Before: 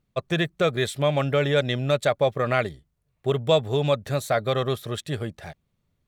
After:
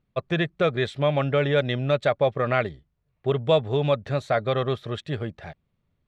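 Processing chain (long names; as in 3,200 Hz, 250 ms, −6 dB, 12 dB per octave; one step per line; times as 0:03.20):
low-pass filter 3,500 Hz 12 dB per octave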